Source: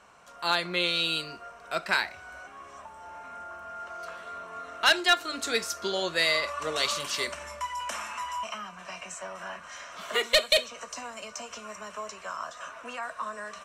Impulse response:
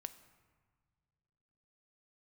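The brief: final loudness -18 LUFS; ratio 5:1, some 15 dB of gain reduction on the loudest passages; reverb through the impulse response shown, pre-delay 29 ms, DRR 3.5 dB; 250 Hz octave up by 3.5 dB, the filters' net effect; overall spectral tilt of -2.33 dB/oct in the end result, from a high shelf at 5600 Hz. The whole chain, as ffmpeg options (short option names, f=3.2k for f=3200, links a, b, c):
-filter_complex "[0:a]equalizer=f=250:t=o:g=5.5,highshelf=f=5.6k:g=-5.5,acompressor=threshold=-35dB:ratio=5,asplit=2[a][b];[1:a]atrim=start_sample=2205,adelay=29[c];[b][c]afir=irnorm=-1:irlink=0,volume=0.5dB[d];[a][d]amix=inputs=2:normalize=0,volume=20dB"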